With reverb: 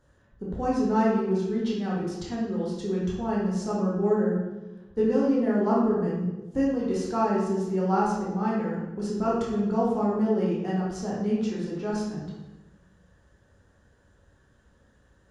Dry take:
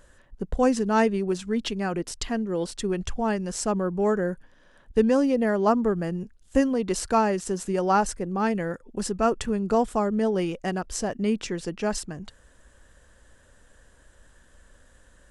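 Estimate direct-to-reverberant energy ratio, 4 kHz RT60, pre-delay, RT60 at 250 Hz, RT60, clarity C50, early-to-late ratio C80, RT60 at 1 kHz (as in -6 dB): -6.5 dB, 0.80 s, 7 ms, 1.6 s, 1.1 s, 0.0 dB, 3.5 dB, 1.0 s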